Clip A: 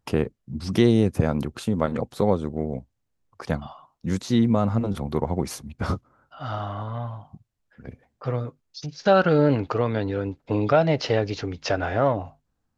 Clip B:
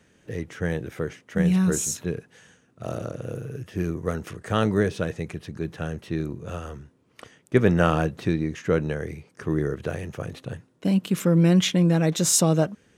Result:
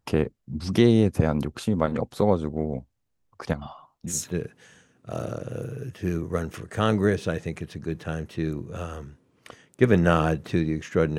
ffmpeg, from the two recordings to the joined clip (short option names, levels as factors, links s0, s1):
-filter_complex "[0:a]asettb=1/sr,asplit=3[s0][s1][s2];[s0]atrim=end=3.534[s3];[s1]atrim=start=3.53:end=4.15,asetpts=PTS-STARTPTS,afade=t=in:d=0.004:c=qsin,afade=t=out:st=0.616:d=0.004:c=qsin,acompressor=threshold=0.0316:ratio=3:attack=3.2:release=140:knee=1:detection=peak[s4];[s2]atrim=start=4.146[s5];[s3][s4]acrossfade=d=0.004:c1=hsin:c2=qsin[s6];[s6][s5]acrossfade=d=0.004:c1=qsin:c2=hsin,apad=whole_dur=11.18,atrim=end=11.18,atrim=end=4.15,asetpts=PTS-STARTPTS[s7];[1:a]atrim=start=1.8:end=8.91,asetpts=PTS-STARTPTS[s8];[s7][s8]acrossfade=d=0.08:c1=tri:c2=tri"